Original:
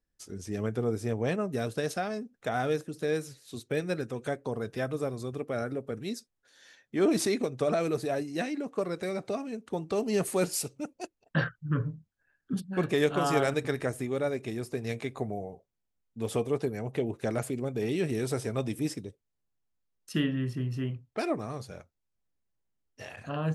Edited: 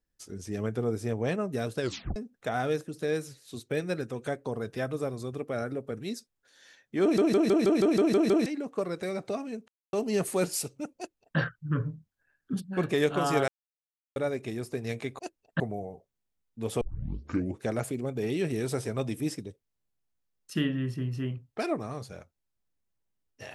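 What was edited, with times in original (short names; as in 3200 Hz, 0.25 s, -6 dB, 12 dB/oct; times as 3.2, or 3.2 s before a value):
1.8 tape stop 0.36 s
7.02 stutter in place 0.16 s, 9 plays
9.68–9.93 mute
10.97–11.38 copy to 15.19
13.48–14.16 mute
16.4 tape start 0.81 s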